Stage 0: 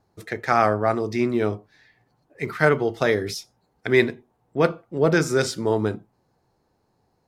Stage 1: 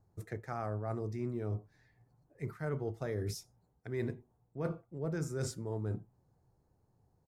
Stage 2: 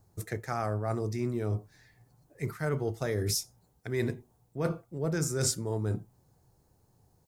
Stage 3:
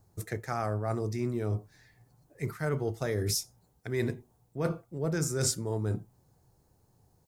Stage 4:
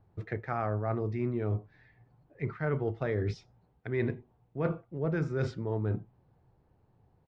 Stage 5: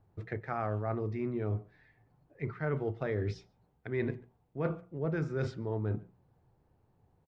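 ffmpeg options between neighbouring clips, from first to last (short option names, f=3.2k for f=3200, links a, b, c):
-af "firequalizer=gain_entry='entry(120,0);entry(220,-9);entry(3200,-22);entry(7100,-10)':delay=0.05:min_phase=1,areverse,acompressor=threshold=-35dB:ratio=6,areverse,volume=1.5dB"
-af "highshelf=f=3.1k:g=11.5,volume=5.5dB"
-af anull
-af "lowpass=f=3k:w=0.5412,lowpass=f=3k:w=1.3066"
-filter_complex "[0:a]bandreject=f=60:t=h:w=6,bandreject=f=120:t=h:w=6,bandreject=f=180:t=h:w=6,asplit=2[a][b];[b]adelay=140,highpass=300,lowpass=3.4k,asoftclip=type=hard:threshold=-27dB,volume=-23dB[c];[a][c]amix=inputs=2:normalize=0,volume=-2dB"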